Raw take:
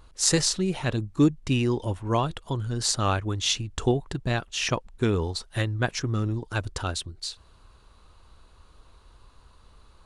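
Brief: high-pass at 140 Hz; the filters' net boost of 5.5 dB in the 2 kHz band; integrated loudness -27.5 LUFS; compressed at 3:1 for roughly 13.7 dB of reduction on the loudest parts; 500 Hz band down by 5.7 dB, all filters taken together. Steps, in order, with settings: high-pass 140 Hz; peaking EQ 500 Hz -8.5 dB; peaking EQ 2 kHz +8 dB; compression 3:1, threshold -37 dBFS; trim +10.5 dB

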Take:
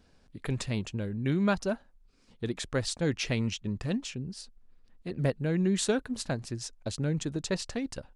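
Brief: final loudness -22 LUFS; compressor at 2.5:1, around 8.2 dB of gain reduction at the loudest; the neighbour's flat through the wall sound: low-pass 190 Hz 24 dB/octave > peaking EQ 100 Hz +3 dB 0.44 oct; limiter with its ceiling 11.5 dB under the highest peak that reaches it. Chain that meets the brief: compression 2.5:1, threshold -34 dBFS; peak limiter -33.5 dBFS; low-pass 190 Hz 24 dB/octave; peaking EQ 100 Hz +3 dB 0.44 oct; trim +25 dB

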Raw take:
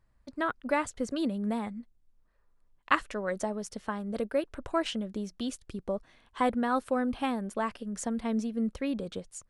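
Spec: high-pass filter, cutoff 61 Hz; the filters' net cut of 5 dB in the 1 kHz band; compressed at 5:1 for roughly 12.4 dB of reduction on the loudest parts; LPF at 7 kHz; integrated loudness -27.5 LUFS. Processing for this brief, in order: high-pass 61 Hz; low-pass 7 kHz; peaking EQ 1 kHz -6.5 dB; compression 5:1, threshold -38 dBFS; trim +15 dB

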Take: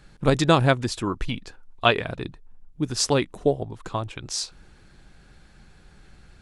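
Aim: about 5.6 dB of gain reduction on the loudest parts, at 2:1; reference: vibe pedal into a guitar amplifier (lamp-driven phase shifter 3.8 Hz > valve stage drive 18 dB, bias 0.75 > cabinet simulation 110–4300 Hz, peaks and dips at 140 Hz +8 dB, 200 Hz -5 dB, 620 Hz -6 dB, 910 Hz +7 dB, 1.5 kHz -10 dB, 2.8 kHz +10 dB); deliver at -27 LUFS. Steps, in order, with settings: compression 2:1, threshold -23 dBFS; lamp-driven phase shifter 3.8 Hz; valve stage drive 18 dB, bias 0.75; cabinet simulation 110–4300 Hz, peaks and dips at 140 Hz +8 dB, 200 Hz -5 dB, 620 Hz -6 dB, 910 Hz +7 dB, 1.5 kHz -10 dB, 2.8 kHz +10 dB; trim +9 dB

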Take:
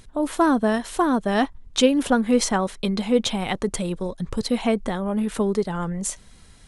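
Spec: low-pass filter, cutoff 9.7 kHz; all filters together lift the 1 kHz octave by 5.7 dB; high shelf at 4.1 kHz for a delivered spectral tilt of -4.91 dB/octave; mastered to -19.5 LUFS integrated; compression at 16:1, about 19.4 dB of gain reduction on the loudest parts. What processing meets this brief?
low-pass 9.7 kHz; peaking EQ 1 kHz +7.5 dB; treble shelf 4.1 kHz -6.5 dB; compression 16:1, threshold -31 dBFS; trim +16.5 dB

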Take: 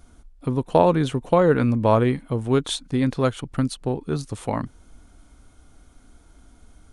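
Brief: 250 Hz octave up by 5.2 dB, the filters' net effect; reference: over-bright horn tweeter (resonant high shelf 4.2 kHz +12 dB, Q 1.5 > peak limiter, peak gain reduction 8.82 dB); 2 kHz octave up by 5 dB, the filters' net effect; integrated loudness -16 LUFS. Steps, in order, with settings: peaking EQ 250 Hz +6 dB; peaking EQ 2 kHz +9 dB; resonant high shelf 4.2 kHz +12 dB, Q 1.5; trim +5 dB; peak limiter -5 dBFS

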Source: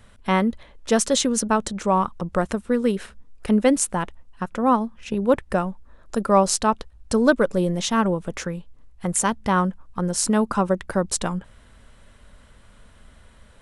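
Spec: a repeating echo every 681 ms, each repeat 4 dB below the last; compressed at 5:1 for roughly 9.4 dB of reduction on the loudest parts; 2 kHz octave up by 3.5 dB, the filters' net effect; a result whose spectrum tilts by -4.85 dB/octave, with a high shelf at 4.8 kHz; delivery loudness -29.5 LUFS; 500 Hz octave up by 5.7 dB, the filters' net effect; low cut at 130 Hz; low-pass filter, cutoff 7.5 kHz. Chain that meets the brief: high-pass 130 Hz; low-pass 7.5 kHz; peaking EQ 500 Hz +6.5 dB; peaking EQ 2 kHz +5 dB; treble shelf 4.8 kHz -4 dB; compression 5:1, threshold -18 dBFS; feedback delay 681 ms, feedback 63%, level -4 dB; trim -6 dB

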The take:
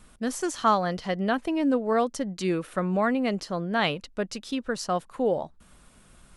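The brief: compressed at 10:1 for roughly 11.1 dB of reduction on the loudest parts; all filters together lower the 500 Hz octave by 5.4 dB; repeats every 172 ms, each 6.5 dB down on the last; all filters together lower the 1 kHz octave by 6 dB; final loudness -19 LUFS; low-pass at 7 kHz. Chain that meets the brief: low-pass 7 kHz; peaking EQ 500 Hz -5 dB; peaking EQ 1 kHz -6.5 dB; compression 10:1, threshold -33 dBFS; feedback delay 172 ms, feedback 47%, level -6.5 dB; trim +18 dB

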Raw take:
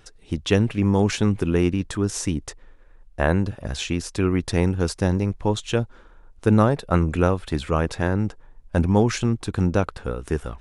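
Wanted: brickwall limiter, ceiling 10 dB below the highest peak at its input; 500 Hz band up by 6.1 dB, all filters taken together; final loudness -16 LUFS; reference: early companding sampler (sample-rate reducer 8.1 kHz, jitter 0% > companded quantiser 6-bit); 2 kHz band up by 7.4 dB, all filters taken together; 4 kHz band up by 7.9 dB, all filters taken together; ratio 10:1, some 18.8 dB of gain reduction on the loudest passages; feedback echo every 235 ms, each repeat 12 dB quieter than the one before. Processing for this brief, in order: peaking EQ 500 Hz +7 dB; peaking EQ 2 kHz +7.5 dB; peaking EQ 4 kHz +7.5 dB; compression 10:1, threshold -29 dBFS; peak limiter -23.5 dBFS; feedback delay 235 ms, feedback 25%, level -12 dB; sample-rate reducer 8.1 kHz, jitter 0%; companded quantiser 6-bit; trim +19.5 dB

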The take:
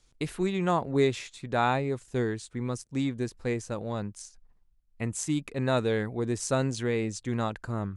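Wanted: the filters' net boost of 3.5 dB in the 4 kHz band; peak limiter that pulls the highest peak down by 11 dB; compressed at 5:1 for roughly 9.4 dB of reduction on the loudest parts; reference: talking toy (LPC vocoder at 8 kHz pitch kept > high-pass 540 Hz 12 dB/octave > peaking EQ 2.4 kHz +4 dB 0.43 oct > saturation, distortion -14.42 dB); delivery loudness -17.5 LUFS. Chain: peaking EQ 4 kHz +3.5 dB; compression 5:1, threshold -30 dBFS; peak limiter -27.5 dBFS; LPC vocoder at 8 kHz pitch kept; high-pass 540 Hz 12 dB/octave; peaking EQ 2.4 kHz +4 dB 0.43 oct; saturation -34 dBFS; trim +28.5 dB

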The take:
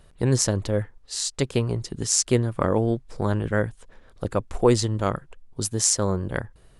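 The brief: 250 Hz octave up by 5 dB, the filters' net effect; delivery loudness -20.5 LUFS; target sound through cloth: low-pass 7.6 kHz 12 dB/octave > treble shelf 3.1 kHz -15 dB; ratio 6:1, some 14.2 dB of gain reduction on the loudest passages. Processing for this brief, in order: peaking EQ 250 Hz +6.5 dB; compression 6:1, threshold -26 dBFS; low-pass 7.6 kHz 12 dB/octave; treble shelf 3.1 kHz -15 dB; trim +12.5 dB

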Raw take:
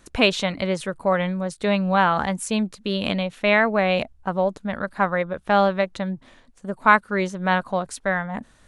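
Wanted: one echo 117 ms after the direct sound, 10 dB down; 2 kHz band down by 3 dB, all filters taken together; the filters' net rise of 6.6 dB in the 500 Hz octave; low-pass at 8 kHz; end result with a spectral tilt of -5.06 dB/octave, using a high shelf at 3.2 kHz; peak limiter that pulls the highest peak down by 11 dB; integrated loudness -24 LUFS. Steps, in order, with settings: low-pass 8 kHz; peaking EQ 500 Hz +8.5 dB; peaking EQ 2 kHz -3.5 dB; treble shelf 3.2 kHz -3.5 dB; peak limiter -12 dBFS; delay 117 ms -10 dB; trim -1.5 dB

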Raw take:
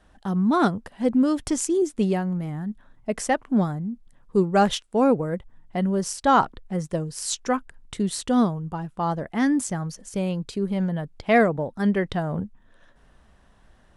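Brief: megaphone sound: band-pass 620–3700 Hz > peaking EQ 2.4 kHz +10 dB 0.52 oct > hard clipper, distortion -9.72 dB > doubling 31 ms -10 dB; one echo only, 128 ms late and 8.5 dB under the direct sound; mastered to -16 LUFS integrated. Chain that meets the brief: band-pass 620–3700 Hz; peaking EQ 2.4 kHz +10 dB 0.52 oct; delay 128 ms -8.5 dB; hard clipper -18.5 dBFS; doubling 31 ms -10 dB; trim +14 dB

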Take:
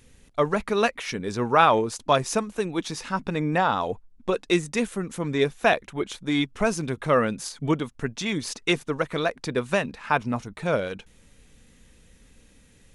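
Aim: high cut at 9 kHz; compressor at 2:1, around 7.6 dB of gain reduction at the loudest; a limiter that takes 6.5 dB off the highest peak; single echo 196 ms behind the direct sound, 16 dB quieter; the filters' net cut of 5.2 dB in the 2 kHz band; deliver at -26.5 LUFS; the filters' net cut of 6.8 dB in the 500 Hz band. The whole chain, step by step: low-pass 9 kHz; peaking EQ 500 Hz -8.5 dB; peaking EQ 2 kHz -6.5 dB; compression 2:1, threshold -30 dBFS; peak limiter -22 dBFS; delay 196 ms -16 dB; trim +8.5 dB

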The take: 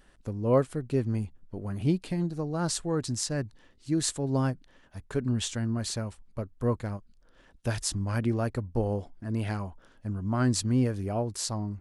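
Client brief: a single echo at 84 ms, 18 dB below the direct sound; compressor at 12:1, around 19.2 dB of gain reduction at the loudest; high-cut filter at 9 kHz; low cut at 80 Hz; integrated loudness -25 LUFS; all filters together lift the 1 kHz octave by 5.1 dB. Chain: high-pass 80 Hz; low-pass 9 kHz; peaking EQ 1 kHz +6.5 dB; compression 12:1, threshold -35 dBFS; delay 84 ms -18 dB; trim +15.5 dB

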